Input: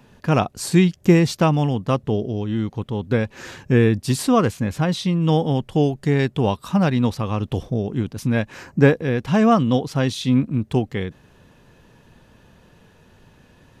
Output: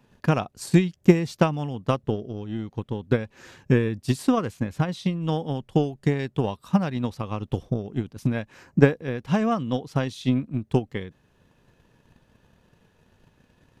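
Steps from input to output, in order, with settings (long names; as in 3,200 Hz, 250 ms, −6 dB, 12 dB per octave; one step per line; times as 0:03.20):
transient designer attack +11 dB, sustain −1 dB
level −10 dB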